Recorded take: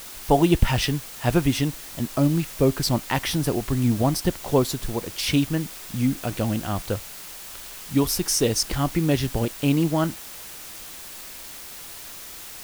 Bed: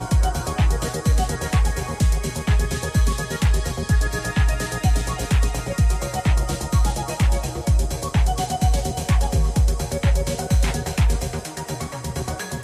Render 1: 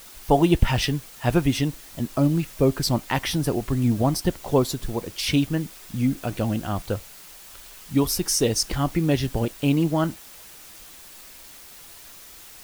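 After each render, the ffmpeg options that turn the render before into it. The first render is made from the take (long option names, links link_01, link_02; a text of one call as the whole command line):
ffmpeg -i in.wav -af "afftdn=noise_reduction=6:noise_floor=-39" out.wav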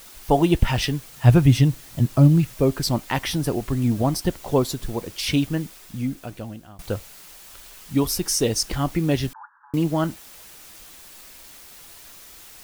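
ffmpeg -i in.wav -filter_complex "[0:a]asettb=1/sr,asplit=3[link_01][link_02][link_03];[link_01]atrim=end=1.094[link_04];[link_02]atrim=start=1.09:end=2.54,asetpts=PTS-STARTPTS,afade=type=in:duration=0.004:curve=qsin,afade=type=out:start_time=1.446:duration=0.004:curve=qsin,equalizer=frequency=120:width=1.5:gain=13[link_05];[link_03]atrim=start=2.536[link_06];[link_04][link_05]acrossfade=duration=0.004:curve1=hsin:curve2=qsin[link_07];[link_07][link_06]acrossfade=duration=0.004:curve1=qsin:curve2=hsin,asettb=1/sr,asplit=3[link_08][link_09][link_10];[link_08]atrim=end=9.334[link_11];[link_09]atrim=start=9.33:end=9.74,asetpts=PTS-STARTPTS,afade=type=in:duration=0.004:curve=qsin,afade=type=out:start_time=0.406:duration=0.004:curve=qsin,asuperpass=centerf=1200:order=20:qfactor=1.4[link_12];[link_10]atrim=start=9.736[link_13];[link_11][link_12]acrossfade=duration=0.004:curve1=hsin:curve2=qsin[link_14];[link_14][link_13]acrossfade=duration=0.004:curve1=qsin:curve2=hsin,asplit=2[link_15][link_16];[link_15]atrim=end=6.79,asetpts=PTS-STARTPTS,afade=type=out:start_time=5.57:duration=1.22:silence=0.0707946[link_17];[link_16]atrim=start=6.79,asetpts=PTS-STARTPTS,afade=type=in:duration=0.004:curve=hsin:silence=0.0707946[link_18];[link_17][link_18]concat=n=2:v=0:a=1" out.wav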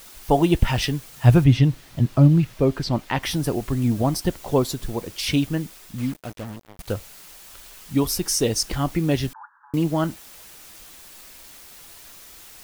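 ffmpeg -i in.wav -filter_complex "[0:a]asettb=1/sr,asplit=3[link_01][link_02][link_03];[link_01]atrim=end=1.444[link_04];[link_02]atrim=start=1.44:end=3.23,asetpts=PTS-STARTPTS,afade=type=in:duration=0.004:curve=qsin,afade=type=out:start_time=1.786:duration=0.004:curve=qsin,acrossover=split=4900[link_05][link_06];[link_06]acompressor=threshold=-51dB:ratio=4:attack=1:release=60[link_07];[link_05][link_07]amix=inputs=2:normalize=0[link_08];[link_03]atrim=start=3.226[link_09];[link_04][link_08]acrossfade=duration=0.004:curve1=hsin:curve2=qsin[link_10];[link_10][link_09]acrossfade=duration=0.004:curve1=qsin:curve2=hsin,asettb=1/sr,asplit=3[link_11][link_12][link_13];[link_11]atrim=end=5.984[link_14];[link_12]atrim=start=5.98:end=6.93,asetpts=PTS-STARTPTS,afade=type=in:duration=0.004:curve=qsin,afade=type=out:start_time=0.946:duration=0.004:curve=qsin,acrusher=bits=5:mix=0:aa=0.5[link_15];[link_13]atrim=start=6.926[link_16];[link_14][link_15]acrossfade=duration=0.004:curve1=hsin:curve2=qsin[link_17];[link_17][link_16]acrossfade=duration=0.004:curve1=qsin:curve2=hsin" out.wav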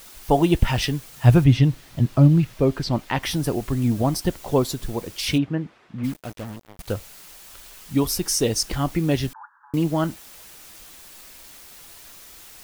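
ffmpeg -i in.wav -filter_complex "[0:a]asplit=3[link_01][link_02][link_03];[link_01]afade=type=out:start_time=5.37:duration=0.02[link_04];[link_02]highpass=100,lowpass=2000,afade=type=in:start_time=5.37:duration=0.02,afade=type=out:start_time=6.03:duration=0.02[link_05];[link_03]afade=type=in:start_time=6.03:duration=0.02[link_06];[link_04][link_05][link_06]amix=inputs=3:normalize=0" out.wav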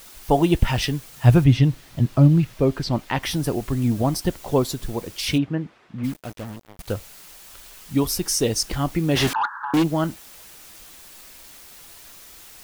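ffmpeg -i in.wav -filter_complex "[0:a]asplit=3[link_01][link_02][link_03];[link_01]afade=type=out:start_time=9.15:duration=0.02[link_04];[link_02]asplit=2[link_05][link_06];[link_06]highpass=frequency=720:poles=1,volume=31dB,asoftclip=type=tanh:threshold=-10.5dB[link_07];[link_05][link_07]amix=inputs=2:normalize=0,lowpass=frequency=3000:poles=1,volume=-6dB,afade=type=in:start_time=9.15:duration=0.02,afade=type=out:start_time=9.82:duration=0.02[link_08];[link_03]afade=type=in:start_time=9.82:duration=0.02[link_09];[link_04][link_08][link_09]amix=inputs=3:normalize=0" out.wav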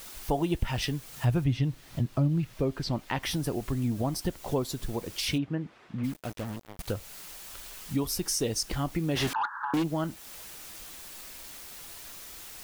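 ffmpeg -i in.wav -af "acompressor=threshold=-32dB:ratio=2" out.wav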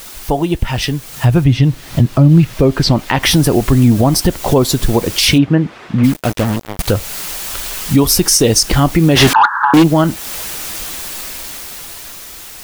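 ffmpeg -i in.wav -af "dynaudnorm=framelen=290:gausssize=11:maxgain=8.5dB,alimiter=level_in=12dB:limit=-1dB:release=50:level=0:latency=1" out.wav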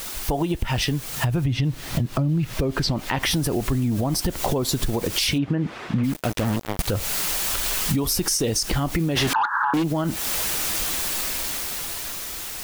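ffmpeg -i in.wav -af "alimiter=limit=-9dB:level=0:latency=1:release=120,acompressor=threshold=-19dB:ratio=6" out.wav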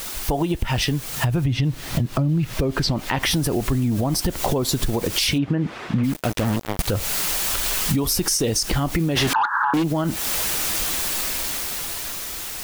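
ffmpeg -i in.wav -af "volume=1.5dB" out.wav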